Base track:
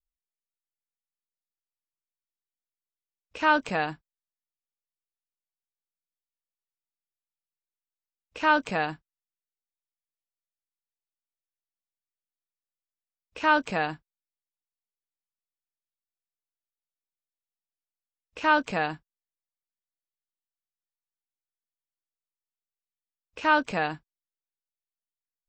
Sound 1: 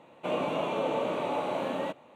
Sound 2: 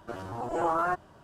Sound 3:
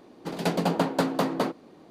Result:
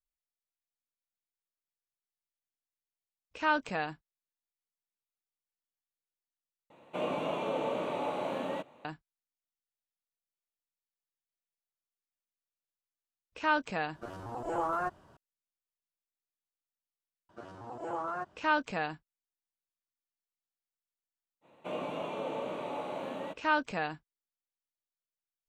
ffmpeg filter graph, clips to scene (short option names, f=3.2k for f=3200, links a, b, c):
-filter_complex "[1:a]asplit=2[a][b];[2:a]asplit=2[c][d];[0:a]volume=-6.5dB[e];[d]highpass=100,lowpass=7.6k[f];[e]asplit=2[g][h];[g]atrim=end=6.704[i];[a]atrim=end=2.15,asetpts=PTS-STARTPTS,volume=-3.5dB[j];[h]atrim=start=8.846[k];[c]atrim=end=1.23,asetpts=PTS-STARTPTS,volume=-5dB,afade=t=in:d=0.004:c=hsin,afade=t=out:st=1.226:d=0.004:c=hsin,adelay=13940[l];[f]atrim=end=1.23,asetpts=PTS-STARTPTS,volume=-9dB,afade=t=in:d=0.004:c=hsin,afade=t=out:st=1.226:d=0.004:c=hsin,adelay=17290[m];[b]atrim=end=2.15,asetpts=PTS-STARTPTS,volume=-7dB,afade=t=in:d=0.05,afade=t=out:st=2.1:d=0.05,adelay=21410[n];[i][j]acrossfade=d=0.004:c1=hsin:c2=hsin[o];[o][k]acrossfade=d=0.004:c1=hsin:c2=hsin[p];[p][l][m][n]amix=inputs=4:normalize=0"